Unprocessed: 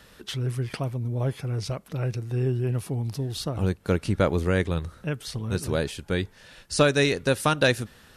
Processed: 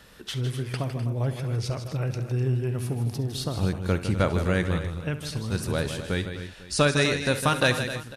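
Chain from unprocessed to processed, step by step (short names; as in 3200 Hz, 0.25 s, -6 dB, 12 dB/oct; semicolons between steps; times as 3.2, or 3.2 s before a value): dynamic EQ 410 Hz, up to -4 dB, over -32 dBFS, Q 1.1; on a send: tapped delay 48/68/157/253/287/498 ms -20/-15/-9.5/-12.5/-18.5/-19.5 dB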